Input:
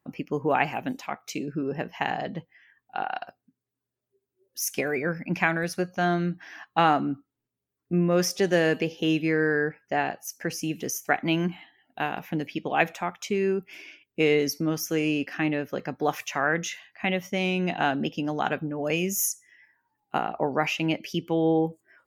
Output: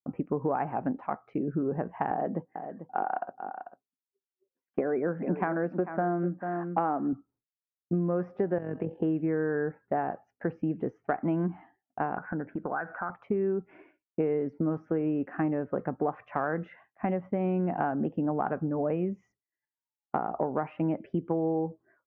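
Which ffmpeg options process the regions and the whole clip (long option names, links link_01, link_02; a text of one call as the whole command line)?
ffmpeg -i in.wav -filter_complex "[0:a]asettb=1/sr,asplit=3[link_01][link_02][link_03];[link_01]atrim=end=2.114[link_04];[link_02]atrim=start=2.11:end=7.13,asetpts=PTS-STARTPTS,afade=type=in:duration=0.004:curve=qsin,afade=type=out:start_time=5.016:duration=0.004:curve=qsin,highpass=270,lowshelf=frequency=410:gain=8.5,aecho=1:1:443:0.237,atrim=end_sample=221382[link_05];[link_03]atrim=start=7.126[link_06];[link_04][link_05]acrossfade=duration=0.004:curve1=hsin:curve2=qsin[link_07];[link_07][link_06]acrossfade=duration=0.004:curve1=qsin:curve2=hsin,asettb=1/sr,asplit=3[link_08][link_09][link_10];[link_08]atrim=end=8.584[link_11];[link_09]atrim=start=8.58:end=9,asetpts=PTS-STARTPTS,afade=type=in:duration=0.004:curve=qsin,afade=type=out:start_time=0.416:duration=0.004:curve=qsin,acrossover=split=220|3000[link_12][link_13][link_14];[link_13]acompressor=threshold=-29dB:ratio=6:attack=3.2:release=140:knee=2.83:detection=peak[link_15];[link_12][link_15][link_14]amix=inputs=3:normalize=0,tremolo=f=45:d=0.621[link_16];[link_10]atrim=start=8.996[link_17];[link_11][link_16]acrossfade=duration=0.004:curve1=hsin:curve2=qsin[link_18];[link_18][link_17]acrossfade=duration=0.004:curve1=qsin:curve2=hsin,asettb=1/sr,asplit=3[link_19][link_20][link_21];[link_19]atrim=end=12.174[link_22];[link_20]atrim=start=12.17:end=13.1,asetpts=PTS-STARTPTS,afade=type=in:duration=0.004:curve=qsin,afade=type=out:start_time=0.926:duration=0.004:curve=qsin,lowpass=frequency=1500:width_type=q:width=12,acompressor=threshold=-33dB:ratio=3:attack=3.2:release=140:knee=1:detection=peak[link_23];[link_21]atrim=start=13.096[link_24];[link_22][link_23]acrossfade=duration=0.004:curve1=hsin:curve2=qsin[link_25];[link_25][link_24]acrossfade=duration=0.004:curve1=qsin:curve2=hsin,lowpass=frequency=1300:width=0.5412,lowpass=frequency=1300:width=1.3066,agate=range=-33dB:threshold=-52dB:ratio=3:detection=peak,acompressor=threshold=-28dB:ratio=6,volume=3dB" out.wav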